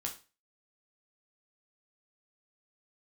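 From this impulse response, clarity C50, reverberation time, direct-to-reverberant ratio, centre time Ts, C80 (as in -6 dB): 10.5 dB, 0.30 s, 0.5 dB, 15 ms, 17.0 dB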